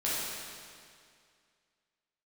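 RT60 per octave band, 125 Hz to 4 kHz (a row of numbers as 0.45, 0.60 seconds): 2.2, 2.2, 2.2, 2.2, 2.2, 2.1 seconds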